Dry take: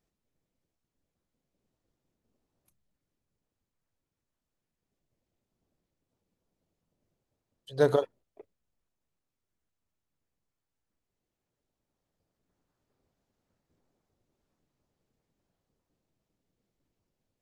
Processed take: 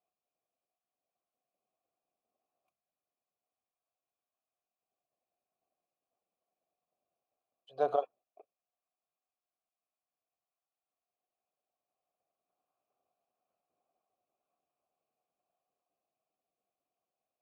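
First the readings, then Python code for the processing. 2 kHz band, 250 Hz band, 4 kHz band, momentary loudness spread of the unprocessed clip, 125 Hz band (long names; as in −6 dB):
−12.0 dB, −16.0 dB, below −10 dB, 17 LU, −23.0 dB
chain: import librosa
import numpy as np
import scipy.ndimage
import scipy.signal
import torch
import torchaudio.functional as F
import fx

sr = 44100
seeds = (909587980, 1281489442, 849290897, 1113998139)

y = fx.vowel_filter(x, sr, vowel='a')
y = y * librosa.db_to_amplitude(6.0)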